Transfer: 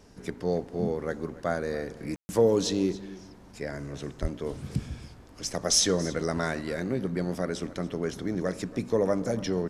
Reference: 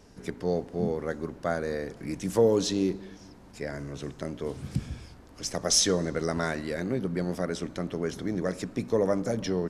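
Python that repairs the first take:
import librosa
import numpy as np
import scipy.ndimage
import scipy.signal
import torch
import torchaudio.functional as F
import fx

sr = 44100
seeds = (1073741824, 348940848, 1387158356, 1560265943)

y = fx.highpass(x, sr, hz=140.0, slope=24, at=(4.21, 4.33), fade=0.02)
y = fx.fix_ambience(y, sr, seeds[0], print_start_s=3.1, print_end_s=3.6, start_s=2.16, end_s=2.29)
y = fx.fix_echo_inverse(y, sr, delay_ms=280, level_db=-18.5)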